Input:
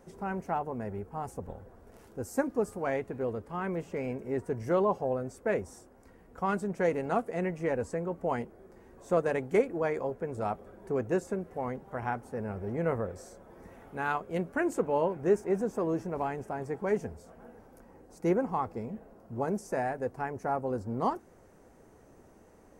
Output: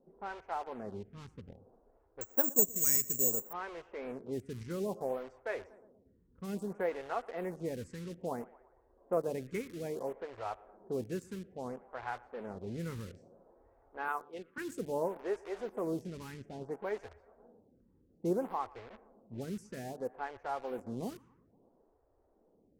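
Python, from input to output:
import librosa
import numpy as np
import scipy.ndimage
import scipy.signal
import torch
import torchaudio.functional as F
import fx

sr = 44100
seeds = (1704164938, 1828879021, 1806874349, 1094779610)

p1 = fx.cabinet(x, sr, low_hz=320.0, low_slope=24, high_hz=4100.0, hz=(350.0, 620.0, 1200.0, 3500.0), db=(-4, -8, 5, 7), at=(14.08, 14.58))
p2 = fx.quant_dither(p1, sr, seeds[0], bits=6, dither='none')
p3 = p1 + (p2 * 10.0 ** (-4.5 / 20.0))
p4 = fx.echo_bbd(p3, sr, ms=118, stages=2048, feedback_pct=61, wet_db=-22)
p5 = fx.env_lowpass(p4, sr, base_hz=620.0, full_db=-24.0)
p6 = fx.resample_bad(p5, sr, factor=6, down='filtered', up='zero_stuff', at=(2.21, 3.53))
p7 = fx.stagger_phaser(p6, sr, hz=0.6)
y = p7 * 10.0 ** (-8.5 / 20.0)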